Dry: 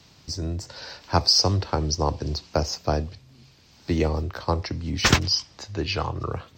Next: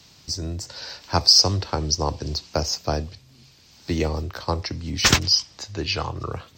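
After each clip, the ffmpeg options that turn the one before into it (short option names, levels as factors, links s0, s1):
-af "highshelf=f=3300:g=8,volume=0.891"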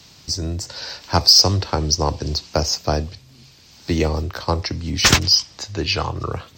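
-af "acontrast=38,volume=0.891"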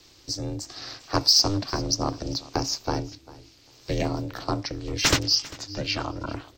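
-af "aeval=exprs='val(0)*sin(2*PI*200*n/s)':c=same,aecho=1:1:397|794:0.1|0.018,volume=0.631"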